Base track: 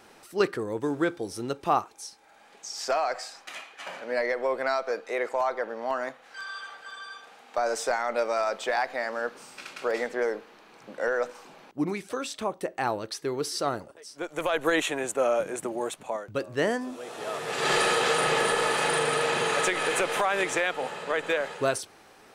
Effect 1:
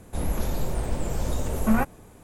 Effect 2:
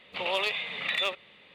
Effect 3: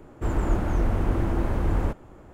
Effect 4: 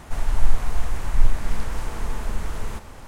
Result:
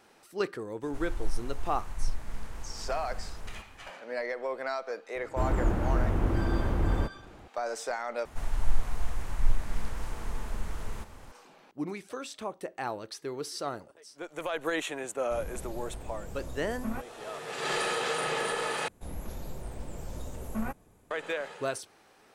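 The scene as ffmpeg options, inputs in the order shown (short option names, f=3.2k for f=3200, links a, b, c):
-filter_complex "[4:a]asplit=2[a][b];[1:a]asplit=2[c][d];[0:a]volume=-6.5dB,asplit=3[e][f][g];[e]atrim=end=8.254[h];[b]atrim=end=3.07,asetpts=PTS-STARTPTS,volume=-7.5dB[i];[f]atrim=start=11.316:end=18.884[j];[d]atrim=end=2.23,asetpts=PTS-STARTPTS,volume=-12dB[k];[g]atrim=start=21.106[l];[a]atrim=end=3.07,asetpts=PTS-STARTPTS,volume=-13dB,afade=t=in:d=0.004:c=hsin,afade=t=out:st=3.066:d=0.004:c=hsin,adelay=830[m];[3:a]atrim=end=2.33,asetpts=PTS-STARTPTS,volume=-3dB,afade=t=in:d=0.004:c=hsin,afade=t=out:st=2.326:d=0.004:c=hsin,adelay=5150[n];[c]atrim=end=2.23,asetpts=PTS-STARTPTS,volume=-14dB,afade=t=in:d=0.004:c=hsin,afade=t=out:st=2.226:d=0.004:c=hsin,adelay=15170[o];[h][i]acrossfade=d=0.004:c1=hsin:c2=hsin[p];[p][j]acrossfade=d=0.004:c1=hsin:c2=hsin[q];[q][k]acrossfade=d=0.004:c1=hsin:c2=hsin[r];[r][l]acrossfade=d=0.004:c1=hsin:c2=hsin[s];[s][m][n][o]amix=inputs=4:normalize=0"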